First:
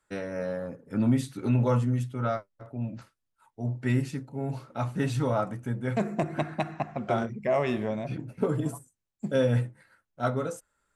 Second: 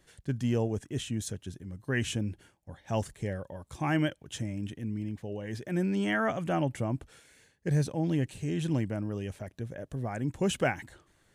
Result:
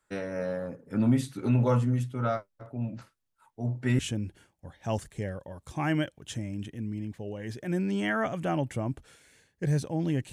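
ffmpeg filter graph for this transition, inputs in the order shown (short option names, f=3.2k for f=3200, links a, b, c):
-filter_complex "[0:a]apad=whole_dur=10.32,atrim=end=10.32,atrim=end=3.992[a];[1:a]atrim=start=2.028:end=8.36[b];[a][b]acrossfade=d=0.004:c1=hsin:c2=hsin"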